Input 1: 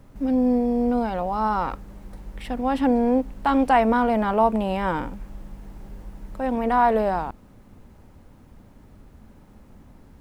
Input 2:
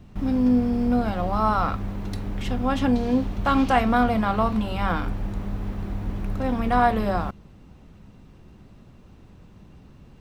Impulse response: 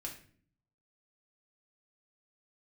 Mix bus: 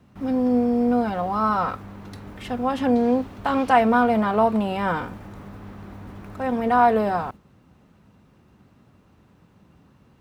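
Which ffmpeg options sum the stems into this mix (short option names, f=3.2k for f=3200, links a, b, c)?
-filter_complex "[0:a]agate=range=-10dB:threshold=-36dB:ratio=16:detection=peak,volume=-1dB[a];[1:a]equalizer=f=1.3k:t=o:w=1.2:g=5,volume=-1,volume=-6dB[b];[a][b]amix=inputs=2:normalize=0,highpass=85"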